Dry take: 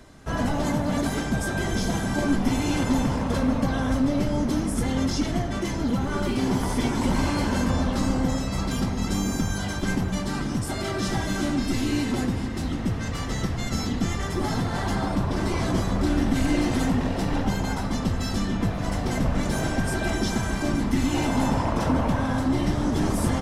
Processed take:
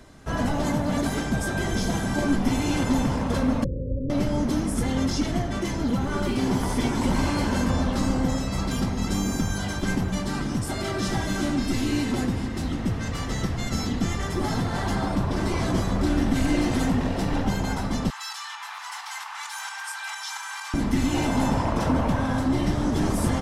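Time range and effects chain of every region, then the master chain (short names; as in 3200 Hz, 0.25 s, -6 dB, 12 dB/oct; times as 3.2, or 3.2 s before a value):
3.64–4.1 Chebyshev low-pass 570 Hz, order 10 + bell 240 Hz -13 dB 0.58 oct
18.1–20.74 Chebyshev high-pass 840 Hz, order 6 + tremolo saw up 4.4 Hz, depth 45% + fast leveller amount 50%
whole clip: dry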